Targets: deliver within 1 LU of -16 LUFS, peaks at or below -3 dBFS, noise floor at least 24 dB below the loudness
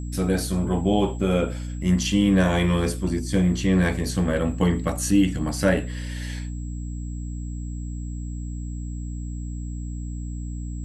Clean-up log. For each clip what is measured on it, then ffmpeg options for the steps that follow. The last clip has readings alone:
hum 60 Hz; harmonics up to 300 Hz; hum level -29 dBFS; steady tone 7700 Hz; tone level -49 dBFS; loudness -25.0 LUFS; peak -7.0 dBFS; loudness target -16.0 LUFS
-> -af "bandreject=f=60:t=h:w=6,bandreject=f=120:t=h:w=6,bandreject=f=180:t=h:w=6,bandreject=f=240:t=h:w=6,bandreject=f=300:t=h:w=6"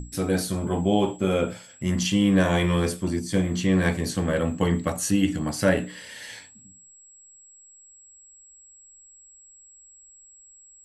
hum none; steady tone 7700 Hz; tone level -49 dBFS
-> -af "bandreject=f=7.7k:w=30"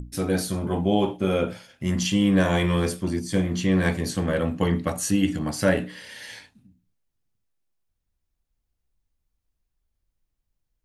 steady tone none; loudness -24.0 LUFS; peak -7.0 dBFS; loudness target -16.0 LUFS
-> -af "volume=8dB,alimiter=limit=-3dB:level=0:latency=1"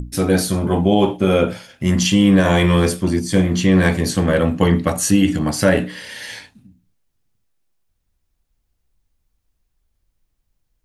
loudness -16.5 LUFS; peak -3.0 dBFS; noise floor -71 dBFS

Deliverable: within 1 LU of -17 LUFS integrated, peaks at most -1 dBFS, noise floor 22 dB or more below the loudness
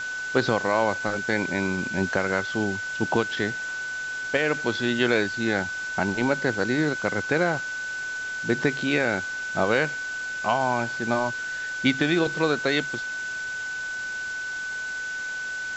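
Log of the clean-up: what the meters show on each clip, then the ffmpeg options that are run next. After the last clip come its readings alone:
steady tone 1500 Hz; tone level -29 dBFS; noise floor -32 dBFS; noise floor target -48 dBFS; loudness -25.5 LUFS; peak -7.0 dBFS; loudness target -17.0 LUFS
-> -af "bandreject=f=1.5k:w=30"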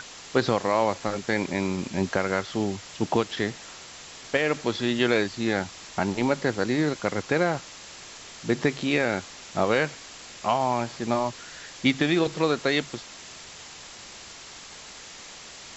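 steady tone none; noise floor -44 dBFS; noise floor target -48 dBFS
-> -af "afftdn=nr=6:nf=-44"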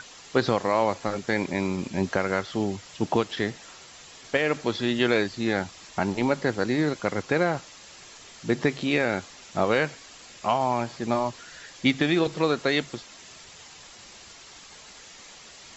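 noise floor -48 dBFS; noise floor target -49 dBFS
-> -af "afftdn=nr=6:nf=-48"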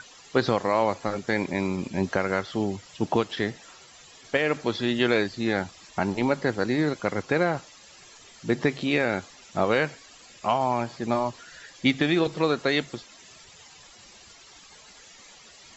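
noise floor -51 dBFS; loudness -26.5 LUFS; peak -7.5 dBFS; loudness target -17.0 LUFS
-> -af "volume=9.5dB,alimiter=limit=-1dB:level=0:latency=1"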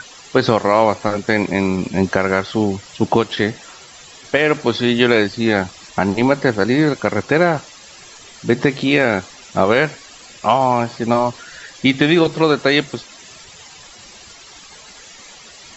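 loudness -17.0 LUFS; peak -1.0 dBFS; noise floor -41 dBFS

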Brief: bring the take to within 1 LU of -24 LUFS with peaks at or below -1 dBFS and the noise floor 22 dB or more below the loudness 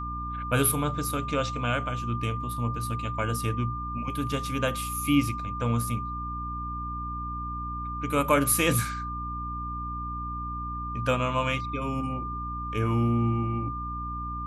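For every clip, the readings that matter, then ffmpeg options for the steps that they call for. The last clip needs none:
hum 60 Hz; harmonics up to 300 Hz; hum level -34 dBFS; steady tone 1200 Hz; tone level -33 dBFS; loudness -28.5 LUFS; peak -9.0 dBFS; loudness target -24.0 LUFS
-> -af "bandreject=f=60:t=h:w=6,bandreject=f=120:t=h:w=6,bandreject=f=180:t=h:w=6,bandreject=f=240:t=h:w=6,bandreject=f=300:t=h:w=6"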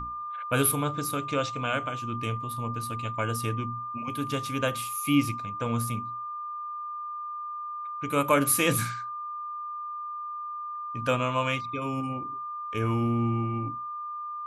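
hum none; steady tone 1200 Hz; tone level -33 dBFS
-> -af "bandreject=f=1.2k:w=30"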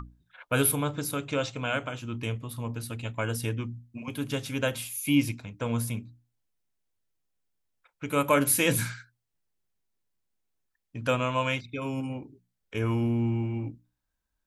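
steady tone none; loudness -29.0 LUFS; peak -10.0 dBFS; loudness target -24.0 LUFS
-> -af "volume=5dB"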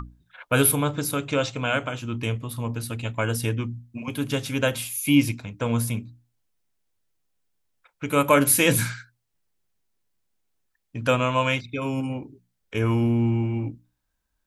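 loudness -24.0 LUFS; peak -5.0 dBFS; noise floor -76 dBFS

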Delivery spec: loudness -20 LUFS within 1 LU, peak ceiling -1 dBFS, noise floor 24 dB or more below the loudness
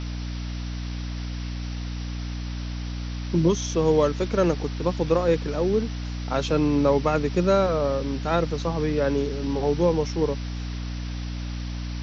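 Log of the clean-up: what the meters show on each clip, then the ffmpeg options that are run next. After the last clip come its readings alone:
hum 60 Hz; harmonics up to 300 Hz; hum level -28 dBFS; noise floor -31 dBFS; noise floor target -50 dBFS; loudness -25.5 LUFS; peak -8.5 dBFS; loudness target -20.0 LUFS
-> -af "bandreject=f=60:t=h:w=4,bandreject=f=120:t=h:w=4,bandreject=f=180:t=h:w=4,bandreject=f=240:t=h:w=4,bandreject=f=300:t=h:w=4"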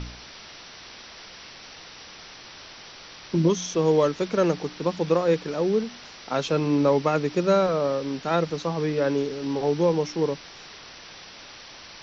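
hum none; noise floor -45 dBFS; noise floor target -49 dBFS
-> -af "afftdn=nr=6:nf=-45"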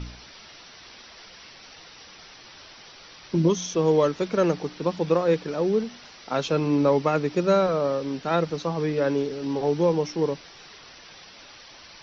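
noise floor -48 dBFS; loudness -24.0 LUFS; peak -9.0 dBFS; loudness target -20.0 LUFS
-> -af "volume=4dB"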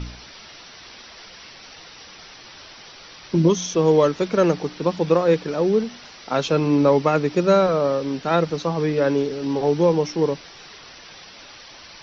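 loudness -20.0 LUFS; peak -5.0 dBFS; noise floor -44 dBFS

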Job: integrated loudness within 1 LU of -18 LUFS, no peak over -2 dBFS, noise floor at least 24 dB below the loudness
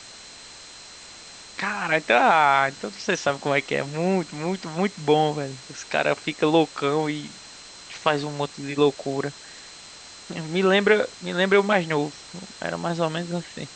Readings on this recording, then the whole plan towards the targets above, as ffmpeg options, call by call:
steady tone 4100 Hz; tone level -47 dBFS; noise floor -44 dBFS; noise floor target -48 dBFS; loudness -23.5 LUFS; peak -4.5 dBFS; loudness target -18.0 LUFS
-> -af "bandreject=f=4.1k:w=30"
-af "afftdn=nr=6:nf=-44"
-af "volume=5.5dB,alimiter=limit=-2dB:level=0:latency=1"

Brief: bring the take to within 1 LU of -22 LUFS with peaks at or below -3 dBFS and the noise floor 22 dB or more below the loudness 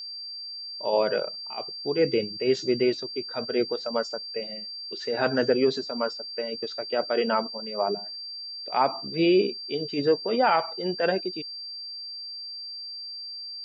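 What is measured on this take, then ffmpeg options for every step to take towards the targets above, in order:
steady tone 4700 Hz; tone level -35 dBFS; loudness -27.5 LUFS; peak -9.5 dBFS; loudness target -22.0 LUFS
-> -af "bandreject=f=4.7k:w=30"
-af "volume=5.5dB"

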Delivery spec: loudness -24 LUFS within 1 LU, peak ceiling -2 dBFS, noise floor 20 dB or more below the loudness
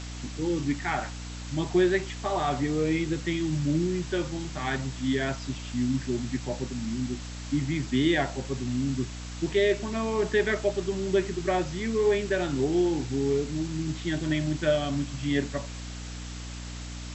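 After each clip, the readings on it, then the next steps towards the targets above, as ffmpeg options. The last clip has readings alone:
hum 60 Hz; harmonics up to 300 Hz; hum level -36 dBFS; noise floor -38 dBFS; noise floor target -49 dBFS; loudness -28.5 LUFS; peak -12.0 dBFS; loudness target -24.0 LUFS
-> -af "bandreject=f=60:t=h:w=6,bandreject=f=120:t=h:w=6,bandreject=f=180:t=h:w=6,bandreject=f=240:t=h:w=6,bandreject=f=300:t=h:w=6"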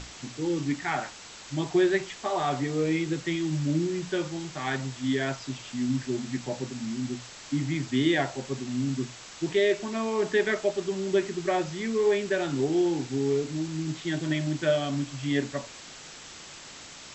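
hum none; noise floor -45 dBFS; noise floor target -49 dBFS
-> -af "afftdn=nr=6:nf=-45"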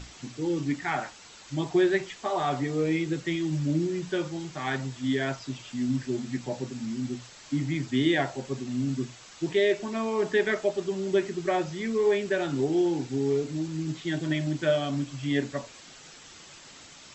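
noise floor -49 dBFS; loudness -28.5 LUFS; peak -12.0 dBFS; loudness target -24.0 LUFS
-> -af "volume=4.5dB"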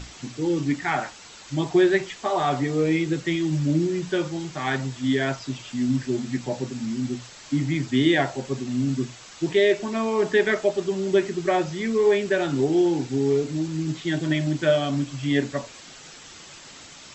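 loudness -24.0 LUFS; peak -7.5 dBFS; noise floor -45 dBFS

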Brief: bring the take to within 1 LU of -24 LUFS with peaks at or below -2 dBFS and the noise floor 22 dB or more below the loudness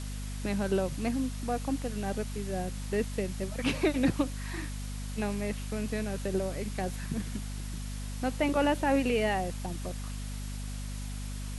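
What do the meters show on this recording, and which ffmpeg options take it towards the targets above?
hum 50 Hz; harmonics up to 250 Hz; hum level -35 dBFS; noise floor -37 dBFS; noise floor target -55 dBFS; loudness -32.5 LUFS; peak -15.0 dBFS; loudness target -24.0 LUFS
-> -af "bandreject=f=50:t=h:w=4,bandreject=f=100:t=h:w=4,bandreject=f=150:t=h:w=4,bandreject=f=200:t=h:w=4,bandreject=f=250:t=h:w=4"
-af "afftdn=nr=18:nf=-37"
-af "volume=8.5dB"

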